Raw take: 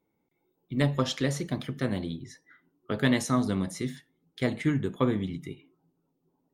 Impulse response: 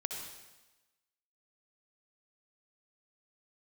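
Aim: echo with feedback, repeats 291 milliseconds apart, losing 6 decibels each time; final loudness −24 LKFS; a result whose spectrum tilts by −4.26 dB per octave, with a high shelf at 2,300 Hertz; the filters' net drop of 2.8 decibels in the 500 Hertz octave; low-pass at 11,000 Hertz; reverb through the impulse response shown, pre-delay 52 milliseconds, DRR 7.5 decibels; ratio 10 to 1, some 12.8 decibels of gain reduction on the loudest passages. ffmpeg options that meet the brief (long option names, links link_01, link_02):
-filter_complex "[0:a]lowpass=11000,equalizer=frequency=500:width_type=o:gain=-4,highshelf=frequency=2300:gain=8,acompressor=threshold=-33dB:ratio=10,aecho=1:1:291|582|873|1164|1455|1746:0.501|0.251|0.125|0.0626|0.0313|0.0157,asplit=2[link_01][link_02];[1:a]atrim=start_sample=2205,adelay=52[link_03];[link_02][link_03]afir=irnorm=-1:irlink=0,volume=-8.5dB[link_04];[link_01][link_04]amix=inputs=2:normalize=0,volume=13dB"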